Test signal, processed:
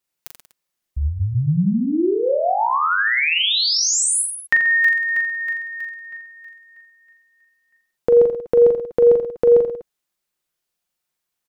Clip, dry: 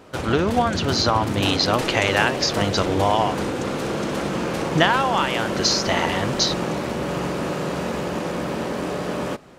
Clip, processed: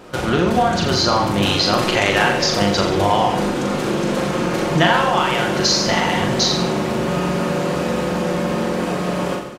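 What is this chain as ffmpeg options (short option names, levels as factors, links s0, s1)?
-filter_complex "[0:a]aecho=1:1:5.6:0.34,aecho=1:1:40|84|132.4|185.6|244.2:0.631|0.398|0.251|0.158|0.1,asplit=2[s0][s1];[s1]acompressor=threshold=0.0447:ratio=6,volume=1.12[s2];[s0][s2]amix=inputs=2:normalize=0,volume=0.841"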